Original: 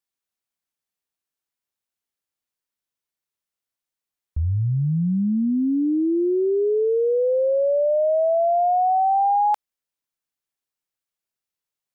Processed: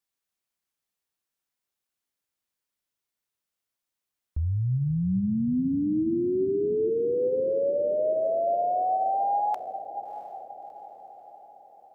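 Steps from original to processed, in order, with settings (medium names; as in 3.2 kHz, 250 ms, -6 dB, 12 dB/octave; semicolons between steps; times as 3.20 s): peak limiter -23.5 dBFS, peak gain reduction 8.5 dB; feedback comb 62 Hz, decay 1.7 s, harmonics all, mix 50%; echo that smears into a reverb 666 ms, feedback 50%, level -12 dB; trim +6.5 dB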